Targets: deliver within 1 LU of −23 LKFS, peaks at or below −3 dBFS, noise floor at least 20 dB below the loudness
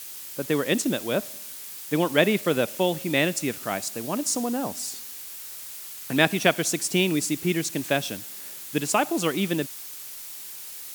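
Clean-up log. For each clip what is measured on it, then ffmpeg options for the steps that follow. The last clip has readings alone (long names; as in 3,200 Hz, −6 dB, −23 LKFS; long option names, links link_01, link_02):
background noise floor −39 dBFS; target noise floor −46 dBFS; integrated loudness −26.0 LKFS; sample peak −2.5 dBFS; target loudness −23.0 LKFS
→ -af "afftdn=noise_reduction=7:noise_floor=-39"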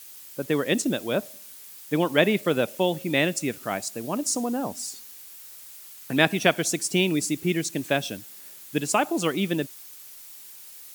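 background noise floor −45 dBFS; target noise floor −46 dBFS
→ -af "afftdn=noise_reduction=6:noise_floor=-45"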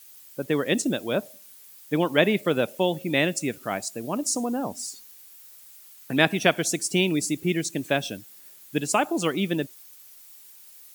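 background noise floor −49 dBFS; integrated loudness −25.5 LKFS; sample peak −2.5 dBFS; target loudness −23.0 LKFS
→ -af "volume=2.5dB,alimiter=limit=-3dB:level=0:latency=1"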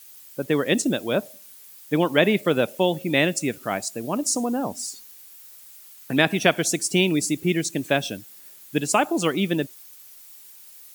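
integrated loudness −23.0 LKFS; sample peak −3.0 dBFS; background noise floor −47 dBFS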